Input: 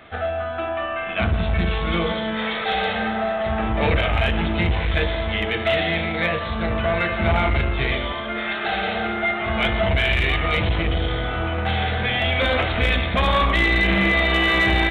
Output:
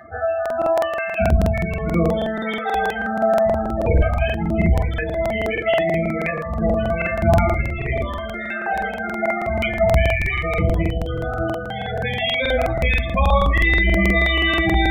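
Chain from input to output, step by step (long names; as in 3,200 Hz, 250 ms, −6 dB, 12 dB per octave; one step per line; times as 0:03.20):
upward compression, threshold −38 dBFS
spectral peaks only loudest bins 16
two-band tremolo in antiphase 1.5 Hz, depth 50%, crossover 1,500 Hz
rectangular room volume 190 cubic metres, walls furnished, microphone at 0.81 metres
regular buffer underruns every 0.16 s, samples 2,048, repeat, from 0:00.41
level +3.5 dB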